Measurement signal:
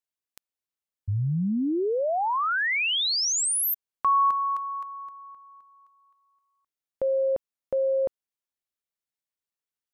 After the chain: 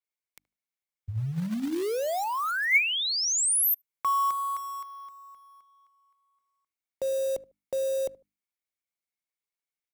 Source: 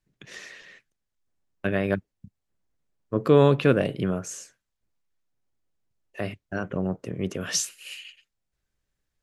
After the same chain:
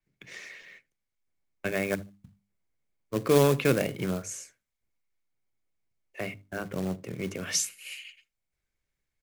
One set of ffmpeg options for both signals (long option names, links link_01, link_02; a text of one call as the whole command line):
ffmpeg -i in.wav -filter_complex "[0:a]equalizer=frequency=2200:width=7.7:gain=12,bandreject=frequency=50:width_type=h:width=6,bandreject=frequency=100:width_type=h:width=6,bandreject=frequency=150:width_type=h:width=6,bandreject=frequency=200:width_type=h:width=6,bandreject=frequency=250:width_type=h:width=6,bandreject=frequency=300:width_type=h:width=6,acrossover=split=170|1400|4300[link_01][link_02][link_03][link_04];[link_02]acrusher=bits=3:mode=log:mix=0:aa=0.000001[link_05];[link_01][link_05][link_03][link_04]amix=inputs=4:normalize=0,asplit=2[link_06][link_07];[link_07]adelay=75,lowpass=frequency=810:poles=1,volume=-18.5dB,asplit=2[link_08][link_09];[link_09]adelay=75,lowpass=frequency=810:poles=1,volume=0.23[link_10];[link_06][link_08][link_10]amix=inputs=3:normalize=0,adynamicequalizer=threshold=0.00794:dfrequency=6500:dqfactor=0.7:tfrequency=6500:tqfactor=0.7:attack=5:release=100:ratio=0.375:range=3:mode=boostabove:tftype=highshelf,volume=-4dB" out.wav